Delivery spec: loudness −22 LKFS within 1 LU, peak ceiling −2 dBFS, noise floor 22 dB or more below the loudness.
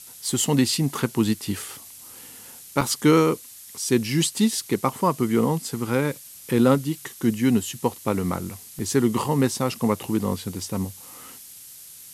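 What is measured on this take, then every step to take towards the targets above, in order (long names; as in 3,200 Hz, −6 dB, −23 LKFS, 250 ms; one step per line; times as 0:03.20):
number of dropouts 2; longest dropout 4.0 ms; background noise floor −44 dBFS; target noise floor −46 dBFS; integrated loudness −23.5 LKFS; sample peak −4.5 dBFS; target loudness −22.0 LKFS
→ repair the gap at 0:02.81/0:08.79, 4 ms
noise reduction from a noise print 6 dB
level +1.5 dB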